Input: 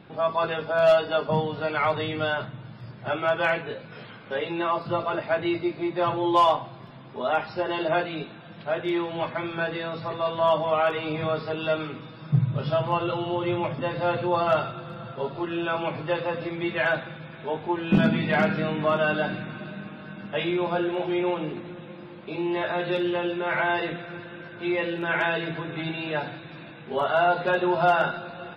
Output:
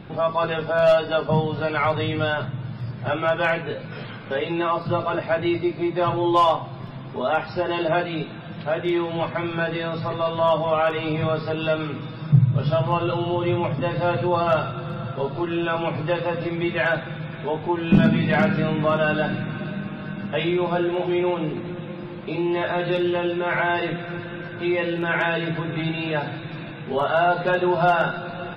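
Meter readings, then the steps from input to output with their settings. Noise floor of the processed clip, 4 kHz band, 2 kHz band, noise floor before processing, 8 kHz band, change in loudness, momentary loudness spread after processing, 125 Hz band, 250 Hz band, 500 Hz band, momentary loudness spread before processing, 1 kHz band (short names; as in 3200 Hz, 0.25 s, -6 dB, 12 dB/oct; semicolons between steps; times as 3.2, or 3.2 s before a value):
-36 dBFS, +2.5 dB, +2.0 dB, -44 dBFS, n/a, +3.0 dB, 12 LU, +7.0 dB, +4.5 dB, +2.5 dB, 16 LU, +2.0 dB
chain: low shelf 130 Hz +11 dB; in parallel at 0 dB: compressor, threshold -33 dBFS, peak gain reduction 20.5 dB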